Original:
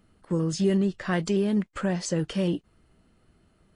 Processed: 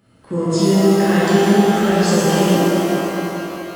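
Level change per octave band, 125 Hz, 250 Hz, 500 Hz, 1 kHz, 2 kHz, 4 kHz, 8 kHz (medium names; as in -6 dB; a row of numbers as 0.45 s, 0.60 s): +10.0 dB, +11.5 dB, +13.5 dB, +19.5 dB, +14.0 dB, +14.0 dB, +12.5 dB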